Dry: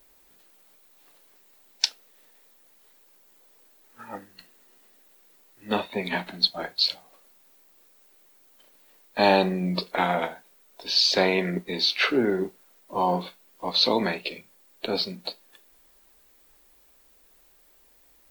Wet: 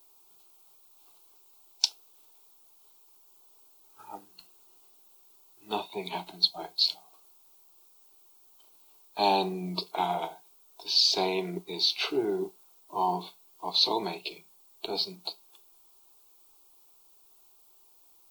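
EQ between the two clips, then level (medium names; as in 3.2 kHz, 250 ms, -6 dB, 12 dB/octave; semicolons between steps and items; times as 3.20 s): bass shelf 240 Hz -11.5 dB; dynamic bell 1.3 kHz, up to -7 dB, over -48 dBFS, Q 3; static phaser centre 360 Hz, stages 8; 0.0 dB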